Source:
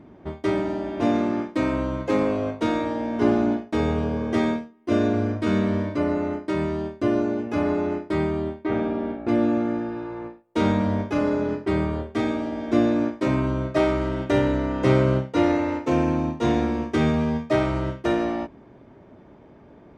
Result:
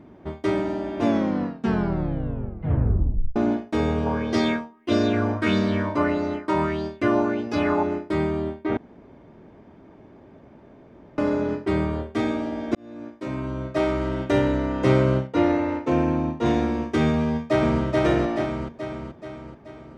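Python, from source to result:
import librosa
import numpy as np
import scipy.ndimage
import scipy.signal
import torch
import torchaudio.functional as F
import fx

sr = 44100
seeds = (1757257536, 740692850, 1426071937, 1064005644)

y = fx.bell_lfo(x, sr, hz=1.6, low_hz=870.0, high_hz=5000.0, db=13, at=(4.06, 7.83))
y = fx.high_shelf(y, sr, hz=5300.0, db=-10.5, at=(15.27, 16.46))
y = fx.echo_throw(y, sr, start_s=17.19, length_s=0.63, ms=430, feedback_pct=55, wet_db=-1.0)
y = fx.edit(y, sr, fx.tape_stop(start_s=1.02, length_s=2.34),
    fx.room_tone_fill(start_s=8.77, length_s=2.41),
    fx.fade_in_span(start_s=12.75, length_s=1.38), tone=tone)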